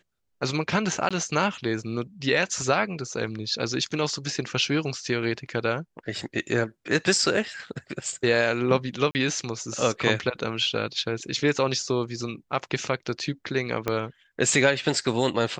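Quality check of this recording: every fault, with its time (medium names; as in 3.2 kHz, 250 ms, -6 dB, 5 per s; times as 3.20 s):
1.09–1.11 s: dropout 16 ms
9.11–9.15 s: dropout 39 ms
13.88 s: pop -11 dBFS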